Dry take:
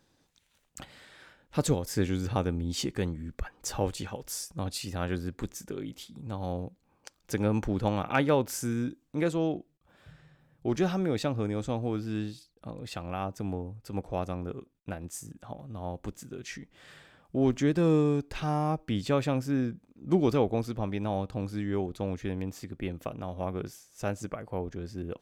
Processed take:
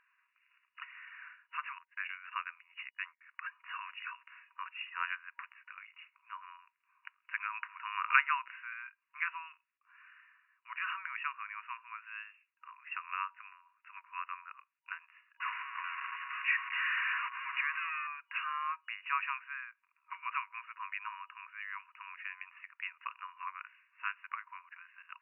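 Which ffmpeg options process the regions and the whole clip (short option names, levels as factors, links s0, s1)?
-filter_complex "[0:a]asettb=1/sr,asplit=3[s0][s1][s2];[s0]atrim=end=1.784[s3];[s1]atrim=start=1.78:end=3.21,asetpts=PTS-STARTPTS,afade=t=in:d=0.004:c=qsin,afade=t=out:st=1.426:d=0.004:c=qsin,equalizer=f=500:t=o:w=1.2:g=-13.5,agate=range=0.0224:threshold=0.0178:ratio=16:release=100:detection=peak[s4];[s2]atrim=start=3.206[s5];[s3][s4]acrossfade=d=0.004:c1=hsin:c2=qsin[s6];[s6][s5]acrossfade=d=0.004:c1=qsin:c2=hsin,asettb=1/sr,asplit=3[s7][s8][s9];[s7]atrim=end=15.404[s10];[s8]atrim=start=15.4:end=18.07,asetpts=PTS-STARTPTS,afade=t=in:d=0.004:c=qsin,afade=t=out:st=2.666:d=0.004:c=qsin,aeval=exprs='val(0)+0.5*0.0316*sgn(val(0))':c=same,aeval=exprs='val(0)+0.00251*sin(2*PI*1100*n/s)':c=same[s11];[s9]atrim=start=18.066[s12];[s10][s11]acrossfade=d=0.004:c1=hsin:c2=qsin[s13];[s13][s12]acrossfade=d=0.004:c1=qsin:c2=hsin,afftfilt=real='re*between(b*sr/4096,950,2900)':imag='im*between(b*sr/4096,950,2900)':win_size=4096:overlap=0.75,equalizer=f=2300:t=o:w=0.77:g=3,volume=1.5"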